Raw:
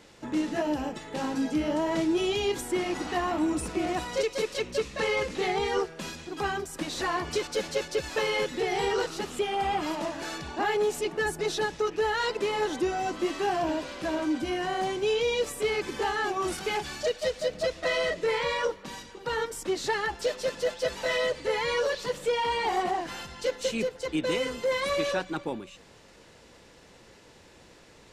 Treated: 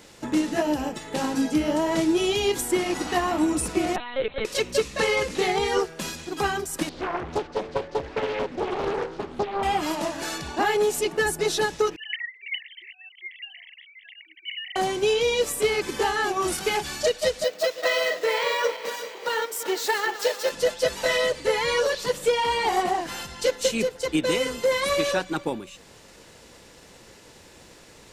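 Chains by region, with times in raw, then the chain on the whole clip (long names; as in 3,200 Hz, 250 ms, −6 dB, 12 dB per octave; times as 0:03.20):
0:03.96–0:04.45: high-pass filter 620 Hz 6 dB per octave + linear-prediction vocoder at 8 kHz pitch kept
0:06.89–0:09.63: head-to-tape spacing loss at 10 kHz 41 dB + hum removal 55.45 Hz, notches 38 + highs frequency-modulated by the lows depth 0.68 ms
0:11.96–0:14.76: three sine waves on the formant tracks + elliptic high-pass filter 2,000 Hz + comb filter 1 ms, depth 72%
0:17.44–0:20.51: feedback delay that plays each chunk backwards 190 ms, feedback 69%, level −11 dB + high-pass filter 430 Hz + linearly interpolated sample-rate reduction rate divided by 2×
whole clip: high-shelf EQ 7,900 Hz +11 dB; transient designer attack +3 dB, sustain −1 dB; level +3.5 dB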